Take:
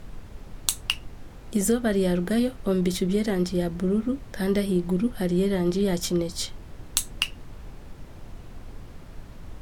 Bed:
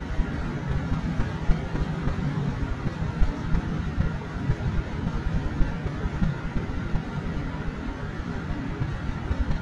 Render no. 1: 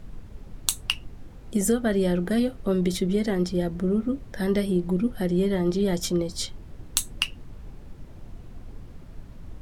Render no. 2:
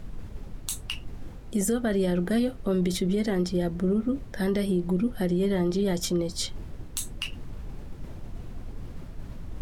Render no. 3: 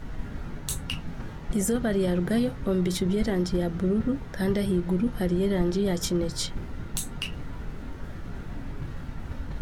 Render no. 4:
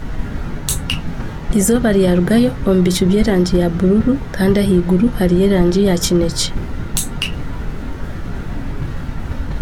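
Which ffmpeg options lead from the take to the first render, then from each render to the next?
-af "afftdn=nr=6:nf=-44"
-af "alimiter=limit=0.133:level=0:latency=1:release=33,areverse,acompressor=mode=upward:threshold=0.0355:ratio=2.5,areverse"
-filter_complex "[1:a]volume=0.316[s0];[0:a][s0]amix=inputs=2:normalize=0"
-af "volume=3.98,alimiter=limit=0.794:level=0:latency=1"

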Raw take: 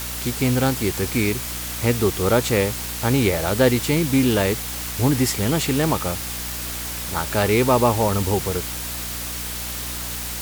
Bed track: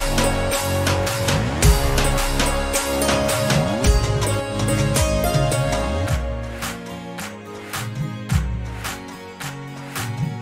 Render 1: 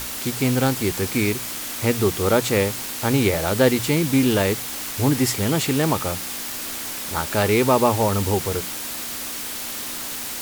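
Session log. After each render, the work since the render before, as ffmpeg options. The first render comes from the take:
-af "bandreject=f=60:t=h:w=6,bandreject=f=120:t=h:w=6,bandreject=f=180:t=h:w=6"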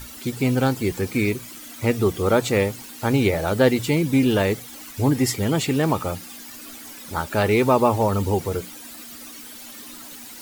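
-af "afftdn=nr=13:nf=-31"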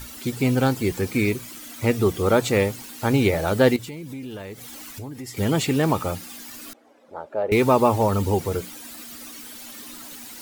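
-filter_complex "[0:a]asettb=1/sr,asplit=3[s0][s1][s2];[s0]atrim=end=3.764[s3];[s1]atrim=start=3.76:end=5.37,asetpts=PTS-STARTPTS,afade=t=in:d=0.004:c=qsin,afade=t=out:st=1.606:d=0.004:c=qsin,acompressor=threshold=0.02:ratio=5:attack=3.2:release=140:knee=1:detection=peak[s4];[s2]atrim=start=5.366[s5];[s3][s4]acrossfade=d=0.004:c1=hsin:c2=qsin[s6];[s6][s5]acrossfade=d=0.004:c1=qsin:c2=hsin,asettb=1/sr,asplit=3[s7][s8][s9];[s7]atrim=end=6.734[s10];[s8]atrim=start=6.73:end=7.52,asetpts=PTS-STARTPTS,afade=t=in:d=0.004:c=qsin,afade=t=out:st=0.786:d=0.004:c=qsin,bandpass=f=560:t=q:w=2.7[s11];[s9]atrim=start=7.516[s12];[s10][s11]acrossfade=d=0.004:c1=hsin:c2=qsin[s13];[s13][s12]acrossfade=d=0.004:c1=qsin:c2=hsin"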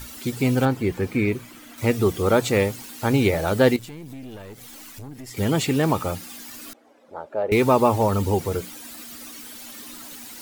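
-filter_complex "[0:a]asettb=1/sr,asplit=3[s0][s1][s2];[s0]atrim=end=0.654[s3];[s1]atrim=start=0.65:end=1.78,asetpts=PTS-STARTPTS,afade=t=in:d=0.004:c=qsin,afade=t=out:st=1.126:d=0.004:c=qsin,acrossover=split=3000[s4][s5];[s5]acompressor=threshold=0.00447:ratio=4:attack=1:release=60[s6];[s4][s6]amix=inputs=2:normalize=0[s7];[s2]atrim=start=1.776[s8];[s3][s7]acrossfade=d=0.004:c1=hsin:c2=qsin[s9];[s9][s8]acrossfade=d=0.004:c1=qsin:c2=hsin,asettb=1/sr,asplit=3[s10][s11][s12];[s10]atrim=end=3.794[s13];[s11]atrim=start=3.79:end=5.31,asetpts=PTS-STARTPTS,afade=t=in:d=0.004:c=qsin,afade=t=out:st=1.516:d=0.004:c=qsin,aeval=exprs='(tanh(39.8*val(0)+0.55)-tanh(0.55))/39.8':c=same[s14];[s12]atrim=start=5.306[s15];[s13][s14]acrossfade=d=0.004:c1=hsin:c2=qsin[s16];[s16][s15]acrossfade=d=0.004:c1=qsin:c2=hsin"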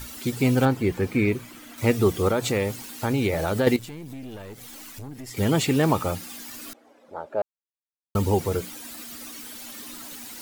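-filter_complex "[0:a]asettb=1/sr,asplit=3[s0][s1][s2];[s0]atrim=end=2.284[s3];[s1]atrim=start=2.28:end=3.67,asetpts=PTS-STARTPTS,afade=t=in:d=0.004:c=qsin,afade=t=out:st=1.386:d=0.004:c=qsin,acompressor=threshold=0.0891:ratio=2.5:attack=3.2:release=140:knee=1:detection=peak[s4];[s2]atrim=start=3.666[s5];[s3][s4]acrossfade=d=0.004:c1=hsin:c2=qsin[s6];[s6][s5]acrossfade=d=0.004:c1=qsin:c2=hsin,asplit=3[s7][s8][s9];[s7]atrim=end=7.42,asetpts=PTS-STARTPTS,afade=t=out:st=7.416:d=0.004:c=hsin[s10];[s8]atrim=start=7.42:end=8.15,asetpts=PTS-STARTPTS,volume=0[s11];[s9]atrim=start=8.15,asetpts=PTS-STARTPTS,afade=t=in:d=0.004:c=hsin[s12];[s10][s11][s12]concat=n=3:v=0:a=1"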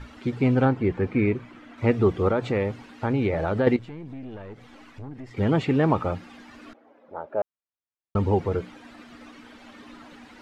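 -af "lowpass=2100"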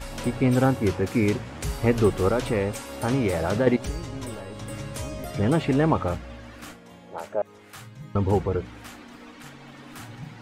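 -filter_complex "[1:a]volume=0.158[s0];[0:a][s0]amix=inputs=2:normalize=0"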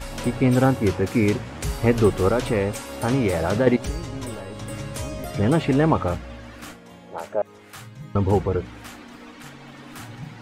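-af "volume=1.33"

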